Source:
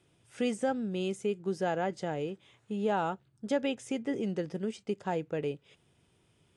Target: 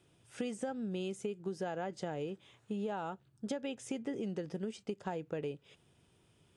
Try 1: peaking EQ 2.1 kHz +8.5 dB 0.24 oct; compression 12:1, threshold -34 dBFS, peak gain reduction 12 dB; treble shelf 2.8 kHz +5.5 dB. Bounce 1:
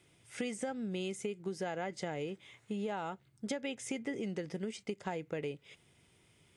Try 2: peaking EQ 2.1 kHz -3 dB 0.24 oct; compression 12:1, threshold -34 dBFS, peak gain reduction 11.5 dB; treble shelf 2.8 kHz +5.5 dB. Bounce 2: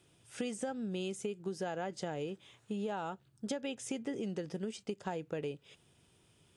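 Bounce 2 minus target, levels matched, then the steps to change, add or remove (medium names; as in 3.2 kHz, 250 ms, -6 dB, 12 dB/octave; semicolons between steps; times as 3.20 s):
4 kHz band +3.0 dB
remove: treble shelf 2.8 kHz +5.5 dB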